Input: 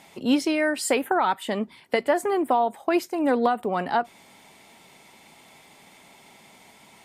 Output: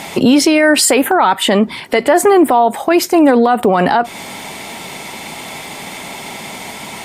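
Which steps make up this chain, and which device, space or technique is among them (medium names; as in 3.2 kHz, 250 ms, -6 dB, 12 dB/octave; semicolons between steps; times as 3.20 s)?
loud club master (compression 2:1, threshold -27 dBFS, peak gain reduction 6.5 dB; hard clipper -14 dBFS, distortion -43 dB; loudness maximiser +25 dB); 1.12–2.09 s: treble shelf 8.9 kHz -4.5 dB; trim -1.5 dB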